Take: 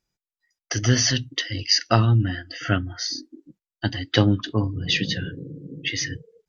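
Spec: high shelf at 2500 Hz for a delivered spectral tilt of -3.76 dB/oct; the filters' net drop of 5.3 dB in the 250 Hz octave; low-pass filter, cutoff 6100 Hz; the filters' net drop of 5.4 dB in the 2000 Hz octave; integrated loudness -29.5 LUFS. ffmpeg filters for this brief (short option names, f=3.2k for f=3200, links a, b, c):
-af "lowpass=6.1k,equalizer=f=250:t=o:g=-7,equalizer=f=2k:t=o:g=-9,highshelf=f=2.5k:g=4,volume=-5dB"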